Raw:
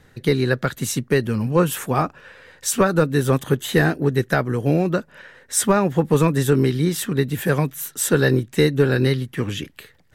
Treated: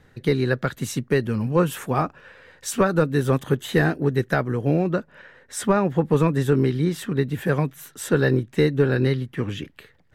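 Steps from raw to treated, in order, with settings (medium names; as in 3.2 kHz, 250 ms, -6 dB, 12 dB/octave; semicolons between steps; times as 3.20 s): treble shelf 4.6 kHz -7 dB, from 4.53 s -12 dB; trim -2 dB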